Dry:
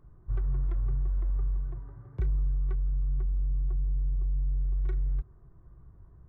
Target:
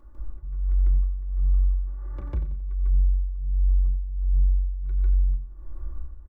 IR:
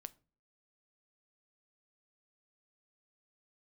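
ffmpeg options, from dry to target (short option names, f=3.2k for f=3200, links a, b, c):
-filter_complex "[0:a]equalizer=f=130:w=1.2:g=-14,aecho=1:1:3.5:0.96,acompressor=threshold=-35dB:ratio=12,asoftclip=type=tanh:threshold=-36dB,tremolo=f=1.4:d=0.81,aecho=1:1:89|178|267|356:0.251|0.111|0.0486|0.0214,asplit=2[a][b];[1:a]atrim=start_sample=2205,lowshelf=f=120:g=10,adelay=148[c];[b][c]afir=irnorm=-1:irlink=0,volume=10dB[d];[a][d]amix=inputs=2:normalize=0,volume=5dB"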